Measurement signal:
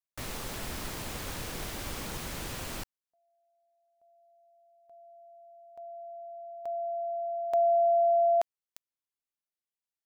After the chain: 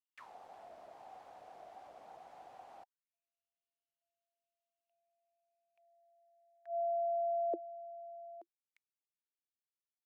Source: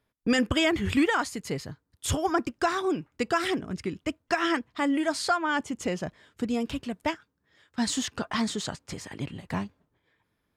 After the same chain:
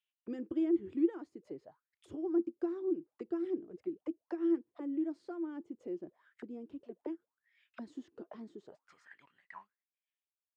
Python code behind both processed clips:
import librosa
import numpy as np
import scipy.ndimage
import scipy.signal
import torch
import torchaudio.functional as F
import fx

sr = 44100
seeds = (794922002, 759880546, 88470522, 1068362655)

y = fx.fade_out_tail(x, sr, length_s=2.53)
y = fx.high_shelf(y, sr, hz=2800.0, db=6.5)
y = fx.auto_wah(y, sr, base_hz=340.0, top_hz=2900.0, q=10.0, full_db=-27.5, direction='down')